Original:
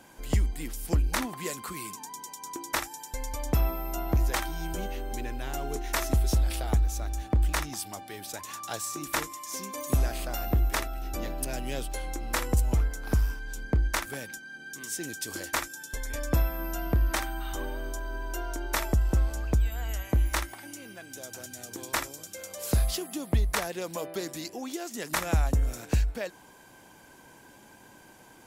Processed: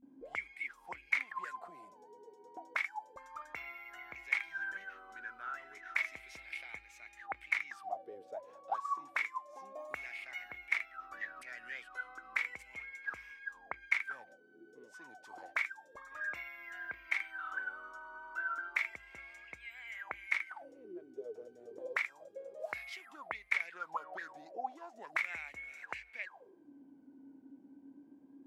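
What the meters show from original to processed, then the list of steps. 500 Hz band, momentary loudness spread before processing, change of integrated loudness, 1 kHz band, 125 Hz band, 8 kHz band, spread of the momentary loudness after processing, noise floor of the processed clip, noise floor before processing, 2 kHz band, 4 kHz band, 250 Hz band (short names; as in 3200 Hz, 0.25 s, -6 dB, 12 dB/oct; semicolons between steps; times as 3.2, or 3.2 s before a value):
-13.5 dB, 12 LU, -9.0 dB, -7.0 dB, under -40 dB, -26.5 dB, 19 LU, -61 dBFS, -53 dBFS, +0.5 dB, -15.0 dB, -22.5 dB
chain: vibrato 0.32 Hz 77 cents; auto-wah 230–2200 Hz, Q 19, up, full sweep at -27.5 dBFS; gain +12 dB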